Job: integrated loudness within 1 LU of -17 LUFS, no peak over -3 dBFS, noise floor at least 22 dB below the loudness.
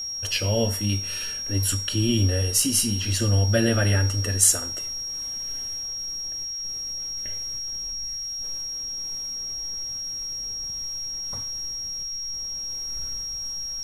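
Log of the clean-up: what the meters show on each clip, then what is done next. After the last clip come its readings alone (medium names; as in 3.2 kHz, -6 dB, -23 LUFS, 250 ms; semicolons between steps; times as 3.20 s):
steady tone 5.6 kHz; tone level -29 dBFS; loudness -25.0 LUFS; peak level -4.0 dBFS; loudness target -17.0 LUFS
-> band-stop 5.6 kHz, Q 30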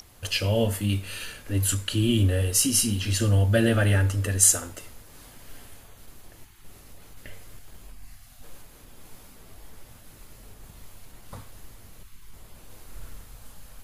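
steady tone not found; loudness -23.0 LUFS; peak level -4.0 dBFS; loudness target -17.0 LUFS
-> trim +6 dB; peak limiter -3 dBFS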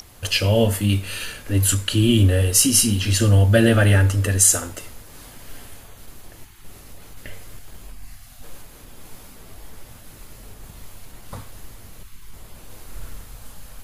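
loudness -17.5 LUFS; peak level -3.0 dBFS; noise floor -44 dBFS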